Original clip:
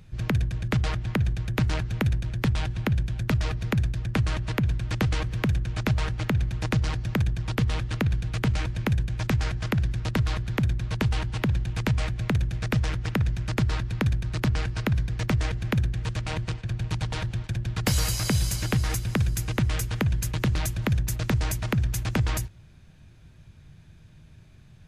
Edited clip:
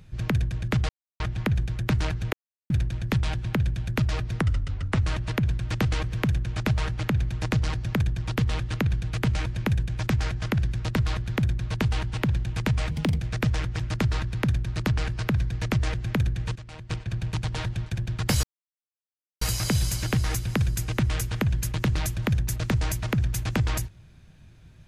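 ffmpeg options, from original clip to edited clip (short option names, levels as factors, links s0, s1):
-filter_complex "[0:a]asplit=11[s0][s1][s2][s3][s4][s5][s6][s7][s8][s9][s10];[s0]atrim=end=0.89,asetpts=PTS-STARTPTS,afade=t=out:st=0.886:d=0.004:c=hsin,apad=pad_dur=0.31[s11];[s1]atrim=start=0.89:end=2.02,asetpts=PTS-STARTPTS,afade=t=in:d=0.004:c=hsin,afade=t=out:st=1.126:d=0.004:c=hsin,apad=pad_dur=0.37[s12];[s2]atrim=start=2.02:end=3.724,asetpts=PTS-STARTPTS,afade=t=in:d=0.004:c=hsin[s13];[s3]atrim=start=3.72:end=4.22,asetpts=PTS-STARTPTS,asetrate=35721,aresample=44100,atrim=end_sample=27222,asetpts=PTS-STARTPTS[s14];[s4]atrim=start=4.216:end=12.114[s15];[s5]atrim=start=12.11:end=12.49,asetpts=PTS-STARTPTS,asetrate=58653,aresample=44100[s16];[s6]atrim=start=12.486:end=13.092[s17];[s7]atrim=start=13.368:end=16.132[s18];[s8]atrim=start=16.128:end=16.472,asetpts=PTS-STARTPTS,volume=0.251[s19];[s9]atrim=start=16.468:end=18.01,asetpts=PTS-STARTPTS,afade=t=out:st=1.538:d=0.004:c=hsin,apad=pad_dur=0.98[s20];[s10]atrim=start=18.01,asetpts=PTS-STARTPTS,afade=t=in:d=0.004:c=hsin[s21];[s11][s12][s13]concat=n=3:v=0:a=1[s22];[s22][s14]acrossfade=d=0.004:c1=hsin:c2=hsin[s23];[s23][s15]acrossfade=d=0.004:c1=hsin:c2=hsin[s24];[s24][s16]acrossfade=d=0.004:c1=hsin:c2=hsin[s25];[s25][s17]acrossfade=d=0.004:c1=hsin:c2=hsin[s26];[s26][s18]acrossfade=d=0.004:c1=hsin:c2=hsin[s27];[s27][s19]acrossfade=d=0.004:c1=hsin:c2=hsin[s28];[s20][s21]concat=n=2:v=0:a=1[s29];[s28][s29]acrossfade=d=0.004:c1=hsin:c2=hsin"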